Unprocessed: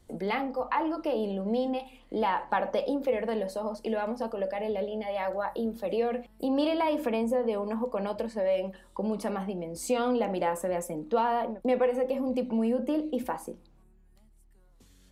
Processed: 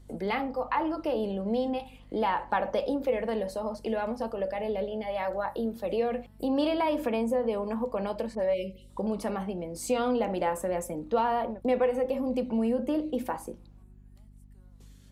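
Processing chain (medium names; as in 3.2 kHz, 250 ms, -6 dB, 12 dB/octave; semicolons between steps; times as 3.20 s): 8.35–9.07 s: phase dispersion highs, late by 48 ms, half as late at 2.3 kHz; 8.54–8.90 s: spectral selection erased 560–2000 Hz; mains buzz 50 Hz, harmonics 5, -53 dBFS -6 dB/octave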